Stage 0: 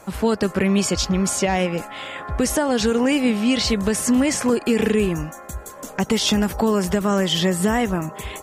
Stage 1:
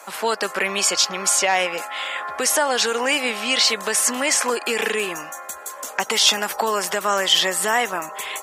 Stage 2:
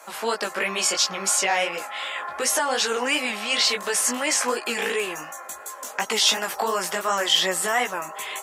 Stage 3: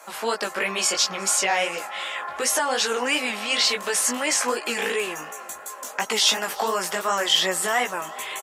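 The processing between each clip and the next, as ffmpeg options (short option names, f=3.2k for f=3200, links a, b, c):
-af "highpass=770,volume=6dB"
-af "flanger=delay=16:depth=4.4:speed=2.8"
-af "aecho=1:1:364|728|1092:0.075|0.0292|0.0114"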